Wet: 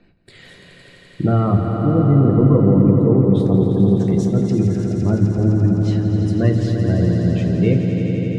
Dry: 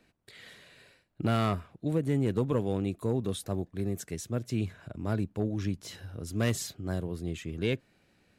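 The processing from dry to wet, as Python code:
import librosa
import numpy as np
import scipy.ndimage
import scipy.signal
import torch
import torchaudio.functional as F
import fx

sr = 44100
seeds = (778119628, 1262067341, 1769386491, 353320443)

y = fx.low_shelf(x, sr, hz=380.0, db=9.0)
y = fx.spec_gate(y, sr, threshold_db=-30, keep='strong')
y = fx.room_shoebox(y, sr, seeds[0], volume_m3=160.0, walls='furnished', distance_m=0.8)
y = fx.env_lowpass_down(y, sr, base_hz=1800.0, full_db=-17.5)
y = fx.echo_swell(y, sr, ms=85, loudest=5, wet_db=-9)
y = y * 10.0 ** (5.0 / 20.0)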